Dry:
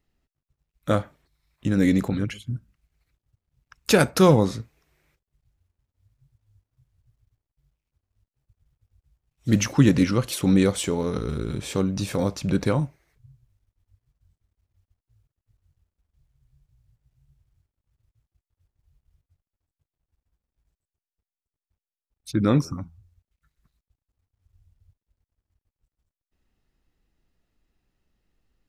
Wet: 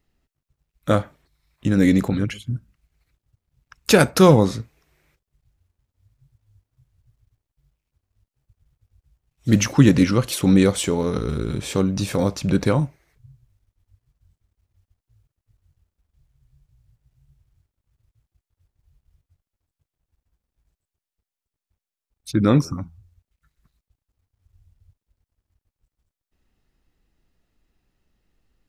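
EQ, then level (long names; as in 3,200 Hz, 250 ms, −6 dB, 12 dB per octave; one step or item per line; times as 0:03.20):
no EQ move
+3.5 dB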